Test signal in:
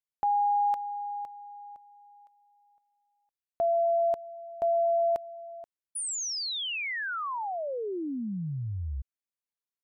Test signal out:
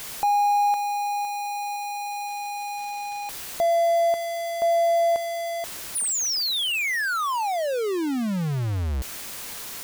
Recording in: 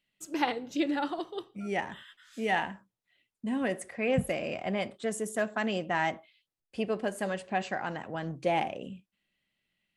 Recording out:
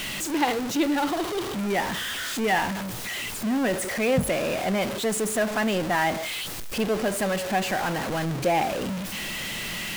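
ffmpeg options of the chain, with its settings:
-af "aeval=exprs='val(0)+0.5*0.0398*sgn(val(0))':c=same,volume=2.5dB"

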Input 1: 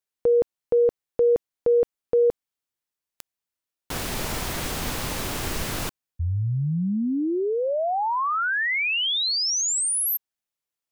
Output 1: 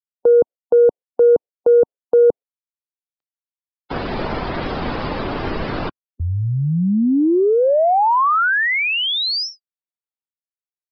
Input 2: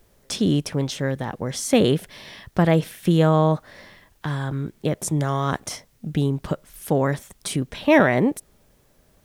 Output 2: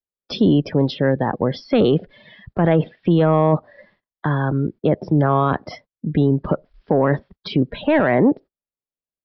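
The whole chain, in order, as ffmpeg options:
-filter_complex "[0:a]agate=range=-30dB:threshold=-48dB:ratio=16:release=158:detection=peak,afftdn=nr=21:nf=-35,acrossover=split=190|1600|3300[a][b][c][d];[b]acontrast=66[e];[a][e][c][d]amix=inputs=4:normalize=0,alimiter=limit=-11dB:level=0:latency=1:release=11,aresample=11025,aresample=44100,volume=3.5dB"

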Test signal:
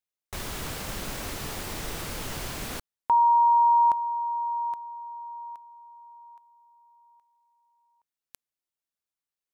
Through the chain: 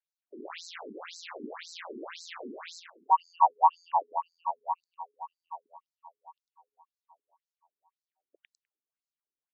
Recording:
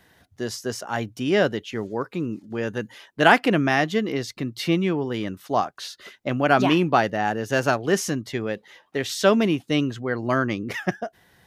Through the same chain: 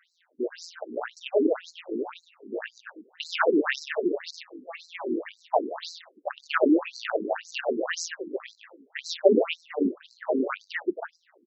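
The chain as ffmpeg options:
-filter_complex "[0:a]asplit=5[a][b][c][d][e];[b]adelay=101,afreqshift=-88,volume=-6dB[f];[c]adelay=202,afreqshift=-176,volume=-15.9dB[g];[d]adelay=303,afreqshift=-264,volume=-25.8dB[h];[e]adelay=404,afreqshift=-352,volume=-35.7dB[i];[a][f][g][h][i]amix=inputs=5:normalize=0,tremolo=f=170:d=0.788,asplit=2[j][k];[k]adynamicsmooth=sensitivity=4.5:basefreq=3.4k,volume=-1dB[l];[j][l]amix=inputs=2:normalize=0,afftfilt=real='re*between(b*sr/1024,300*pow(5700/300,0.5+0.5*sin(2*PI*1.9*pts/sr))/1.41,300*pow(5700/300,0.5+0.5*sin(2*PI*1.9*pts/sr))*1.41)':imag='im*between(b*sr/1024,300*pow(5700/300,0.5+0.5*sin(2*PI*1.9*pts/sr))/1.41,300*pow(5700/300,0.5+0.5*sin(2*PI*1.9*pts/sr))*1.41)':win_size=1024:overlap=0.75"

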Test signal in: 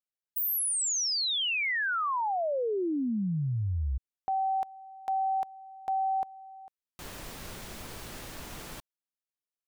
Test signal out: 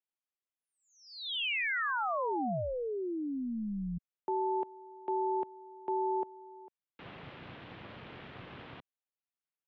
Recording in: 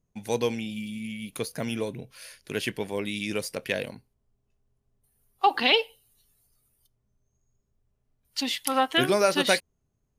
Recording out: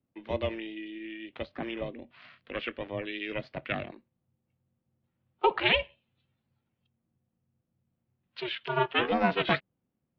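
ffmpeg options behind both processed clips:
-af "aeval=exprs='val(0)*sin(2*PI*250*n/s)':c=same,highpass=f=260:t=q:w=0.5412,highpass=f=260:t=q:w=1.307,lowpass=f=3.5k:t=q:w=0.5176,lowpass=f=3.5k:t=q:w=0.7071,lowpass=f=3.5k:t=q:w=1.932,afreqshift=-140"

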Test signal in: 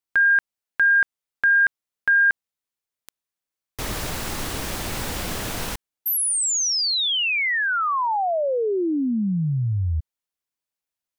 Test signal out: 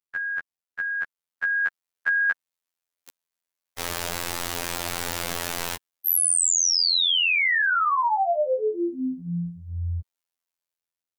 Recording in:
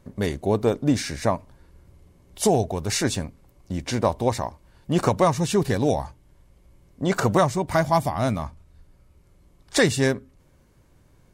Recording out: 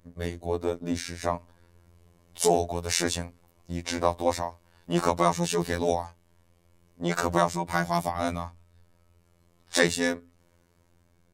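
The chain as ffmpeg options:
-filter_complex "[0:a]acrossover=split=400[a][b];[b]dynaudnorm=f=950:g=3:m=8dB[c];[a][c]amix=inputs=2:normalize=0,afftfilt=real='hypot(re,im)*cos(PI*b)':imag='0':win_size=2048:overlap=0.75,volume=-4dB"

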